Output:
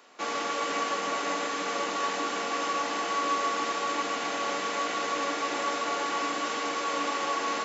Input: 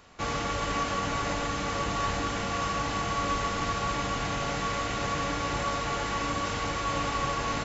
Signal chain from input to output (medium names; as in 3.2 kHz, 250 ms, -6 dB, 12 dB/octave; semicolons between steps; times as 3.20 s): high-pass 270 Hz 24 dB/octave; on a send: two-band feedback delay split 510 Hz, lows 353 ms, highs 153 ms, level -8 dB